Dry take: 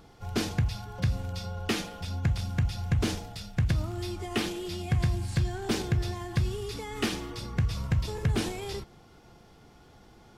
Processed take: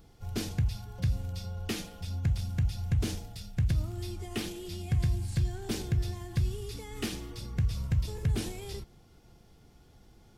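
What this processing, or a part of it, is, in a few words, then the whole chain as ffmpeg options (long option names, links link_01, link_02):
smiley-face EQ: -af "lowshelf=frequency=110:gain=8.5,equalizer=frequency=1100:width_type=o:width=1.5:gain=-4.5,highshelf=frequency=8600:gain=8.5,volume=-6dB"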